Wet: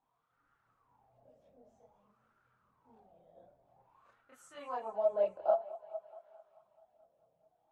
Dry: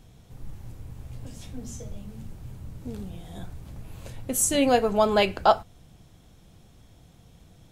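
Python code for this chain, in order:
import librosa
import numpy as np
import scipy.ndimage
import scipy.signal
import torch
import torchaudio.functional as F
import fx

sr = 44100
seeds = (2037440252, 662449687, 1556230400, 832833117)

y = fx.wah_lfo(x, sr, hz=0.52, low_hz=570.0, high_hz=1400.0, q=8.4)
y = fx.echo_thinned(y, sr, ms=215, feedback_pct=69, hz=280.0, wet_db=-18)
y = fx.chorus_voices(y, sr, voices=6, hz=0.35, base_ms=28, depth_ms=4.4, mix_pct=60)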